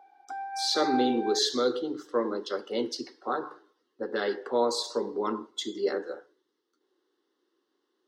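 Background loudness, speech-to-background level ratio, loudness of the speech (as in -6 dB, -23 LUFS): -35.0 LUFS, 5.5 dB, -29.5 LUFS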